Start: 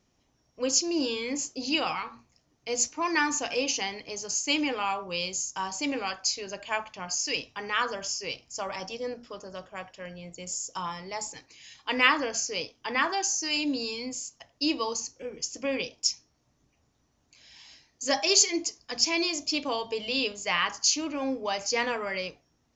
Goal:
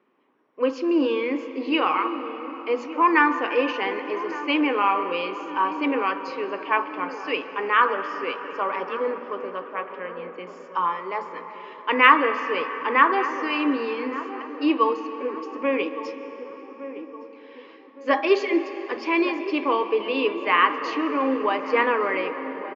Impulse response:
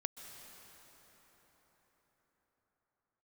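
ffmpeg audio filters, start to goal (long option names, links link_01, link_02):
-filter_complex "[0:a]highpass=frequency=260:width=0.5412,highpass=frequency=260:width=1.3066,equalizer=frequency=410:width_type=q:width=4:gain=4,equalizer=frequency=690:width_type=q:width=4:gain=-8,equalizer=frequency=1100:width_type=q:width=4:gain=7,lowpass=frequency=2600:width=0.5412,lowpass=frequency=2600:width=1.3066,asplit=2[link_01][link_02];[link_02]adelay=1164,lowpass=frequency=990:poles=1,volume=-12dB,asplit=2[link_03][link_04];[link_04]adelay=1164,lowpass=frequency=990:poles=1,volume=0.52,asplit=2[link_05][link_06];[link_06]adelay=1164,lowpass=frequency=990:poles=1,volume=0.52,asplit=2[link_07][link_08];[link_08]adelay=1164,lowpass=frequency=990:poles=1,volume=0.52,asplit=2[link_09][link_10];[link_10]adelay=1164,lowpass=frequency=990:poles=1,volume=0.52[link_11];[link_01][link_03][link_05][link_07][link_09][link_11]amix=inputs=6:normalize=0,asplit=2[link_12][link_13];[1:a]atrim=start_sample=2205,highshelf=frequency=3900:gain=-10[link_14];[link_13][link_14]afir=irnorm=-1:irlink=0,volume=5.5dB[link_15];[link_12][link_15]amix=inputs=2:normalize=0"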